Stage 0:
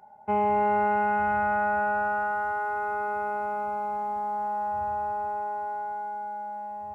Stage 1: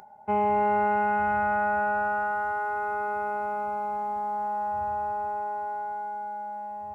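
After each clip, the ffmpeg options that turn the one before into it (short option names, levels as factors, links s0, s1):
-af "acompressor=mode=upward:threshold=0.00447:ratio=2.5"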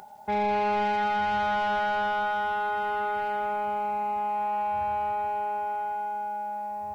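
-af "acrusher=bits=10:mix=0:aa=0.000001,asoftclip=type=tanh:threshold=0.0531,volume=1.41"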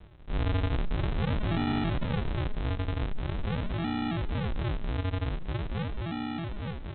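-filter_complex "[0:a]aresample=8000,acrusher=samples=29:mix=1:aa=0.000001:lfo=1:lforange=29:lforate=0.44,aresample=44100,asplit=6[s0][s1][s2][s3][s4][s5];[s1]adelay=186,afreqshift=48,volume=0.0794[s6];[s2]adelay=372,afreqshift=96,volume=0.049[s7];[s3]adelay=558,afreqshift=144,volume=0.0305[s8];[s4]adelay=744,afreqshift=192,volume=0.0188[s9];[s5]adelay=930,afreqshift=240,volume=0.0117[s10];[s0][s6][s7][s8][s9][s10]amix=inputs=6:normalize=0,volume=0.841"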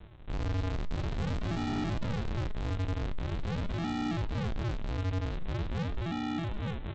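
-af "aresample=16000,volume=37.6,asoftclip=hard,volume=0.0266,aresample=44100,flanger=delay=9.1:depth=2.6:regen=79:speed=0.44:shape=sinusoidal,volume=1.88"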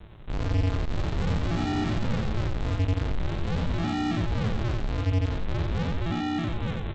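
-af "aecho=1:1:91:0.668,volume=1.58"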